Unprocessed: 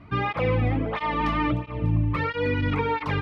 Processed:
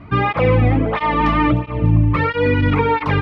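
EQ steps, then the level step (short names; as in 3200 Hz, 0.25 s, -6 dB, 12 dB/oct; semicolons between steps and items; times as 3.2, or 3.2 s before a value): high shelf 4500 Hz -9 dB; +9.0 dB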